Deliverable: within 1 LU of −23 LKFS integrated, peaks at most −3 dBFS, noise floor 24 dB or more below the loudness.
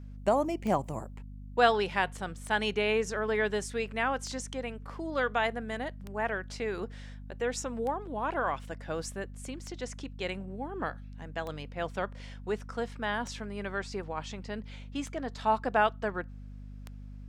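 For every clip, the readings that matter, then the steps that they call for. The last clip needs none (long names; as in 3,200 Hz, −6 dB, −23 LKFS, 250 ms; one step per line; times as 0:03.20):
number of clicks 10; mains hum 50 Hz; hum harmonics up to 250 Hz; level of the hum −42 dBFS; integrated loudness −32.5 LKFS; sample peak −12.0 dBFS; target loudness −23.0 LKFS
→ click removal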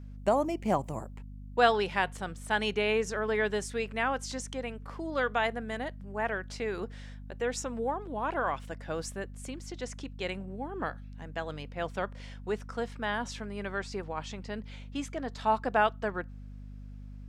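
number of clicks 0; mains hum 50 Hz; hum harmonics up to 250 Hz; level of the hum −42 dBFS
→ hum removal 50 Hz, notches 5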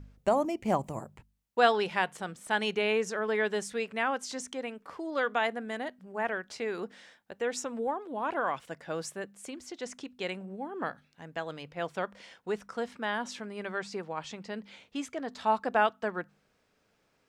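mains hum none found; integrated loudness −33.0 LKFS; sample peak −12.0 dBFS; target loudness −23.0 LKFS
→ level +10 dB
brickwall limiter −3 dBFS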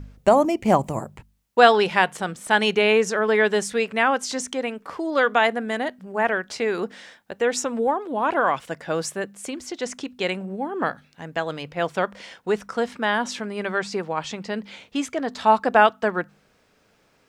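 integrated loudness −23.0 LKFS; sample peak −3.0 dBFS; background noise floor −62 dBFS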